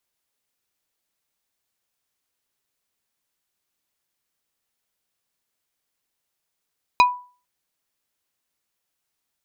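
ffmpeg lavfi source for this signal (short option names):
-f lavfi -i "aevalsrc='0.398*pow(10,-3*t/0.38)*sin(2*PI*987*t)+0.224*pow(10,-3*t/0.127)*sin(2*PI*2467.5*t)+0.126*pow(10,-3*t/0.072)*sin(2*PI*3948*t)+0.0708*pow(10,-3*t/0.055)*sin(2*PI*4935*t)+0.0398*pow(10,-3*t/0.04)*sin(2*PI*6415.5*t)':d=0.45:s=44100"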